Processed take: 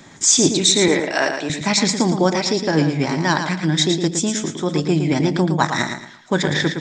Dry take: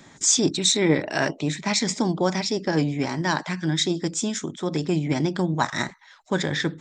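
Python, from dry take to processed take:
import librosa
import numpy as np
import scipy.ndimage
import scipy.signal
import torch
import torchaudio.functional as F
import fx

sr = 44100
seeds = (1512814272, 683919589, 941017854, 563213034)

y = fx.highpass(x, sr, hz=370.0, slope=12, at=(0.88, 1.5))
y = fx.echo_feedback(y, sr, ms=113, feedback_pct=29, wet_db=-7.0)
y = F.gain(torch.from_numpy(y), 5.0).numpy()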